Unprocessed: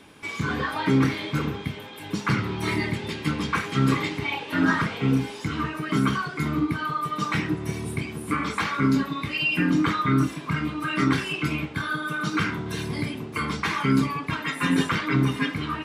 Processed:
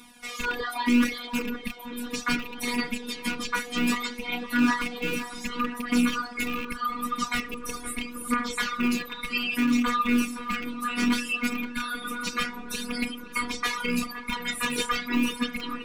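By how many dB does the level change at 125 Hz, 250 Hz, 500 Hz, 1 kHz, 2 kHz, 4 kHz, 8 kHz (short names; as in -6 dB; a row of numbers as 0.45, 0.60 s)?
-19.0, -2.5, -5.0, -2.5, -1.5, +0.5, +5.0 dB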